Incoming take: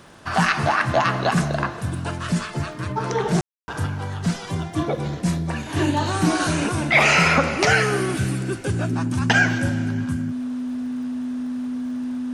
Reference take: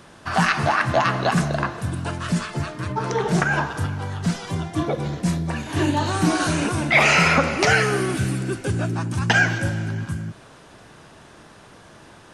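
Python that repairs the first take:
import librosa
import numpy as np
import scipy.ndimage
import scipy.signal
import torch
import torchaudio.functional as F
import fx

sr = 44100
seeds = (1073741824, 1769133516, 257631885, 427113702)

y = fx.fix_declick_ar(x, sr, threshold=6.5)
y = fx.notch(y, sr, hz=250.0, q=30.0)
y = fx.fix_ambience(y, sr, seeds[0], print_start_s=0.0, print_end_s=0.5, start_s=3.41, end_s=3.68)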